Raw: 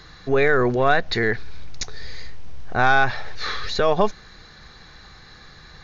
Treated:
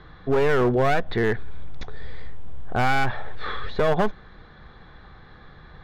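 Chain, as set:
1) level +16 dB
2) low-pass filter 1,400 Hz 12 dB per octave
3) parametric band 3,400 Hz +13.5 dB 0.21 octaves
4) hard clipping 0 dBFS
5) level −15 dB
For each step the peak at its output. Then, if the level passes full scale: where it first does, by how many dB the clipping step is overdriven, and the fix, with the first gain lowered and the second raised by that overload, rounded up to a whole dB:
+10.5, +10.0, +10.0, 0.0, −15.0 dBFS
step 1, 10.0 dB
step 1 +6 dB, step 5 −5 dB

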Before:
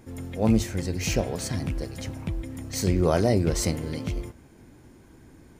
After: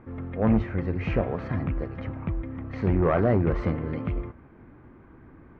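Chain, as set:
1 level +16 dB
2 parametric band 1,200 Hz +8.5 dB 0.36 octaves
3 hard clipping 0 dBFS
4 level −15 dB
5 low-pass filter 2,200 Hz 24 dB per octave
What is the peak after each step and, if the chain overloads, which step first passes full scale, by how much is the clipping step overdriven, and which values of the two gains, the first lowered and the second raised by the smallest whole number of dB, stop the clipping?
+7.5, +9.0, 0.0, −15.0, −13.5 dBFS
step 1, 9.0 dB
step 1 +7 dB, step 4 −6 dB

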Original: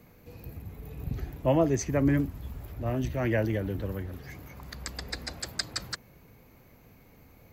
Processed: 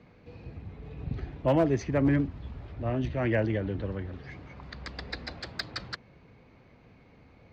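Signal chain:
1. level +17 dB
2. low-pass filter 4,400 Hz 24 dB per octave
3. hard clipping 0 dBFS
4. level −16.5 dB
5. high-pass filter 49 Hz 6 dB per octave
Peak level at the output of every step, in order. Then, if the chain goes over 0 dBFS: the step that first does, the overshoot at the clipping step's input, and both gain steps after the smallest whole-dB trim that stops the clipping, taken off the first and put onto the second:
+5.5, +4.5, 0.0, −16.5, −15.0 dBFS
step 1, 4.5 dB
step 1 +12 dB, step 4 −11.5 dB

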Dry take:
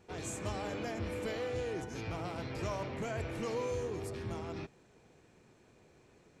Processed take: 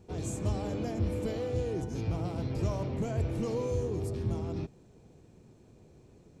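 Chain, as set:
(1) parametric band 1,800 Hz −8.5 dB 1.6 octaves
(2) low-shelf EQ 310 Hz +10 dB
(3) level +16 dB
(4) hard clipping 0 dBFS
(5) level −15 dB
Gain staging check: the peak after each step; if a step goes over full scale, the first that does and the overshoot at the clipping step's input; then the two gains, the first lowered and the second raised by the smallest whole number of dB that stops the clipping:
−27.0, −20.0, −4.0, −4.0, −19.0 dBFS
no step passes full scale

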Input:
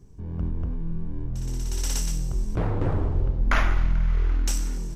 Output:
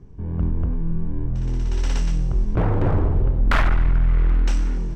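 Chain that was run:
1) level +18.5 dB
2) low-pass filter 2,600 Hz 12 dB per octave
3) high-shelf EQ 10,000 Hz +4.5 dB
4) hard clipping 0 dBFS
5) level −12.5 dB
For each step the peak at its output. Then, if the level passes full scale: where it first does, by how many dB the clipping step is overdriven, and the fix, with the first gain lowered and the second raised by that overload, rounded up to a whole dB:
+9.5, +9.0, +9.0, 0.0, −12.5 dBFS
step 1, 9.0 dB
step 1 +9.5 dB, step 5 −3.5 dB

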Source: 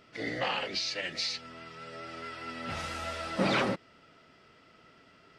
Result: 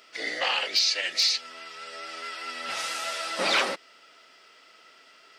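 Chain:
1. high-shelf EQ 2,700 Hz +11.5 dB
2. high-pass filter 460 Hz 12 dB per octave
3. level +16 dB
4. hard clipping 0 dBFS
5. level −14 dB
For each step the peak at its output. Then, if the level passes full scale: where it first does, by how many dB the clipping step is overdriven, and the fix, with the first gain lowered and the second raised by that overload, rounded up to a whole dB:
−11.5, −11.5, +4.5, 0.0, −14.0 dBFS
step 3, 4.5 dB
step 3 +11 dB, step 5 −9 dB

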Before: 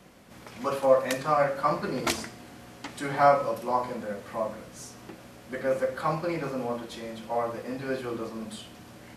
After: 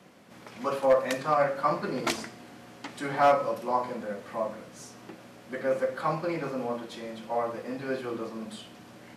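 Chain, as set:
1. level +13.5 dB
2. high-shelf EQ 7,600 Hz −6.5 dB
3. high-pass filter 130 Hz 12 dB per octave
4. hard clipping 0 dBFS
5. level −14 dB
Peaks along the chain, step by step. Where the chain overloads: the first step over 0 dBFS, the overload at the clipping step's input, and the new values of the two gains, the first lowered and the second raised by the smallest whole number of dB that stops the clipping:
+5.5, +5.5, +5.5, 0.0, −14.0 dBFS
step 1, 5.5 dB
step 1 +7.5 dB, step 5 −8 dB

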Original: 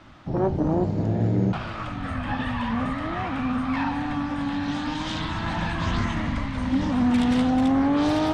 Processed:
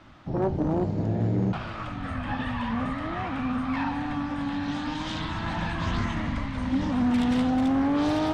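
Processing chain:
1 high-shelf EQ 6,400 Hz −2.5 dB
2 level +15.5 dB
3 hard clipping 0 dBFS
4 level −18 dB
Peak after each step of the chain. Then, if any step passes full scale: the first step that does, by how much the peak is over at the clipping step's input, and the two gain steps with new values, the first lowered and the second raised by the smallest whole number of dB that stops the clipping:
−11.0, +4.5, 0.0, −18.0 dBFS
step 2, 4.5 dB
step 2 +10.5 dB, step 4 −13 dB

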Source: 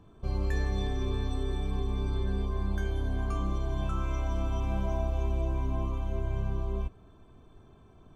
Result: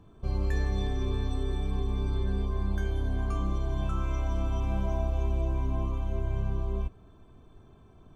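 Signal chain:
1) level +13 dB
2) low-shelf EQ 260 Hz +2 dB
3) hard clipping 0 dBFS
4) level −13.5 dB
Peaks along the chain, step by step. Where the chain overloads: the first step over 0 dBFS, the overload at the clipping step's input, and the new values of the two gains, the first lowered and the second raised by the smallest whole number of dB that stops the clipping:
−5.0, −3.5, −3.5, −17.0 dBFS
no step passes full scale

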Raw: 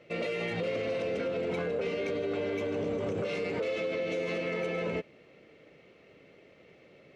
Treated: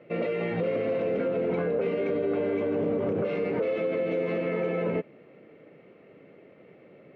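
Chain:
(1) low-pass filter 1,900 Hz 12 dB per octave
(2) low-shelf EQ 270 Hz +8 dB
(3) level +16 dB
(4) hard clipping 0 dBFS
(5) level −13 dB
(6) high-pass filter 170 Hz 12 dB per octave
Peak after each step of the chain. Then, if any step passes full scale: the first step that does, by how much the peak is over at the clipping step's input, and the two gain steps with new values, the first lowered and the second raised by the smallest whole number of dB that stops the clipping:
−24.0, −20.5, −4.5, −4.5, −17.5, −17.5 dBFS
no step passes full scale

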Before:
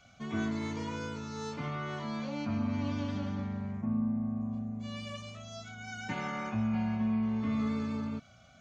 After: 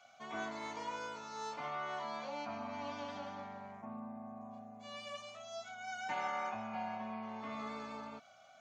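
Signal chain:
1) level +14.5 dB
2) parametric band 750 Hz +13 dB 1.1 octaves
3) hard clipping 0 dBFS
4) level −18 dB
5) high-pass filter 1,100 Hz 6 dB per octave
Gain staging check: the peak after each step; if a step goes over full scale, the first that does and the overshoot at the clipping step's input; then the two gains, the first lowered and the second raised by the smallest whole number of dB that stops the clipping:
−7.5, −4.0, −4.0, −22.0, −27.0 dBFS
no step passes full scale

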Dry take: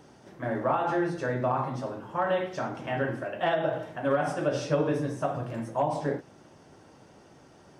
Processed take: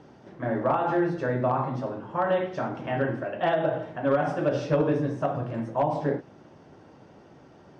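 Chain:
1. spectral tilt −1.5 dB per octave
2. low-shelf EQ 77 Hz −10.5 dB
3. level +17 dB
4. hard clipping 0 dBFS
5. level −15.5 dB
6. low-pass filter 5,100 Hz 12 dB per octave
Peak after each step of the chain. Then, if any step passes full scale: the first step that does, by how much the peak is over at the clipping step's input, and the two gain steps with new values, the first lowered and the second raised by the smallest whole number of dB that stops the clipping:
−13.0, −13.5, +3.5, 0.0, −15.5, −15.5 dBFS
step 3, 3.5 dB
step 3 +13 dB, step 5 −11.5 dB

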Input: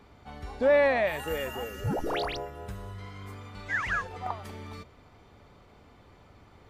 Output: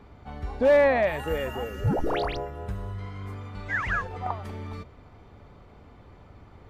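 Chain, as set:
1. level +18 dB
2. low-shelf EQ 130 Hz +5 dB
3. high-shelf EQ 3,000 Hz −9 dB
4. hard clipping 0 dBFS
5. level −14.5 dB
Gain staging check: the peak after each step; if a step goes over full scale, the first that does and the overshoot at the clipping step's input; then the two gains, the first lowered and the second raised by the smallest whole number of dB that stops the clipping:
+3.0, +3.5, +3.0, 0.0, −14.5 dBFS
step 1, 3.0 dB
step 1 +15 dB, step 5 −11.5 dB

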